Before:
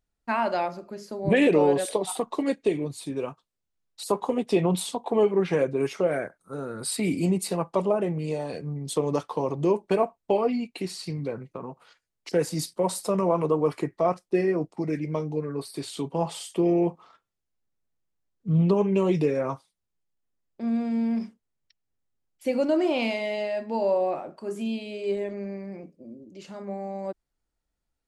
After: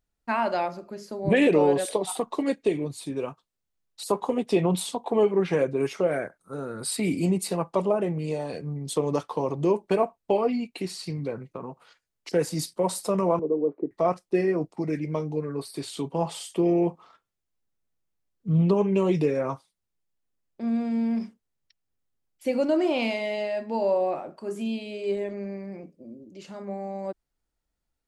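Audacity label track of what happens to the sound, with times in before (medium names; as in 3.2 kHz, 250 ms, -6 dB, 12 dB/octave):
13.390000	13.910000	Butterworth band-pass 340 Hz, Q 1.2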